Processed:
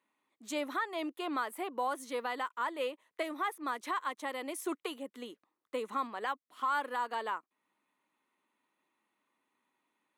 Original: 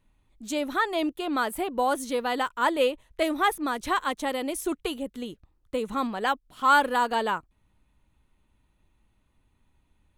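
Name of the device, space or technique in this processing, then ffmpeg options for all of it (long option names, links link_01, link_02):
laptop speaker: -af "highpass=frequency=260:width=0.5412,highpass=frequency=260:width=1.3066,equalizer=frequency=1100:width_type=o:width=0.5:gain=7.5,equalizer=frequency=2000:width_type=o:width=0.45:gain=6,alimiter=limit=-17dB:level=0:latency=1:release=405,volume=-7dB"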